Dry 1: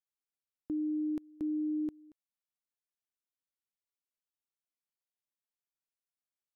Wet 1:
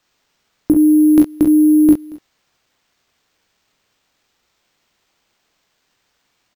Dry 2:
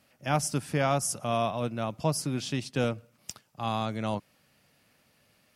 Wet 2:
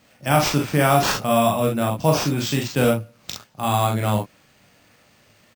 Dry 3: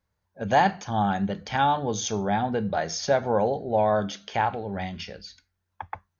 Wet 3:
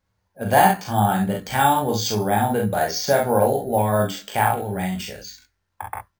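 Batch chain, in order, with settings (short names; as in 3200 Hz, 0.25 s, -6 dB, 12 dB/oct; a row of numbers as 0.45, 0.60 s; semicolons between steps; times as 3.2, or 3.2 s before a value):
early reflections 21 ms -7.5 dB, 38 ms -4.5 dB, 48 ms -6.5 dB, 65 ms -8 dB; careless resampling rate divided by 4×, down none, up hold; normalise peaks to -3 dBFS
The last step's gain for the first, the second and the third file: +25.0, +7.0, +2.5 dB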